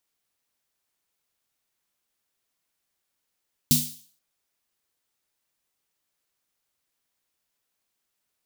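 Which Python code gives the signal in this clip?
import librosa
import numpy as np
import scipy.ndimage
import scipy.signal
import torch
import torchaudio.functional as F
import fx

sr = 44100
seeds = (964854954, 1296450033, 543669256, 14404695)

y = fx.drum_snare(sr, seeds[0], length_s=0.48, hz=150.0, second_hz=240.0, noise_db=2.0, noise_from_hz=3400.0, decay_s=0.35, noise_decay_s=0.49)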